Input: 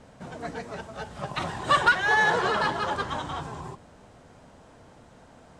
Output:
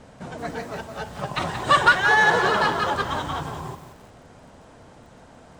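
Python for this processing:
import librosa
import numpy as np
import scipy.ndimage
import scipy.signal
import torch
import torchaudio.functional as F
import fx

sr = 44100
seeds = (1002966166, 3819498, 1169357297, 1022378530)

y = fx.echo_crushed(x, sr, ms=176, feedback_pct=35, bits=8, wet_db=-10.0)
y = F.gain(torch.from_numpy(y), 4.0).numpy()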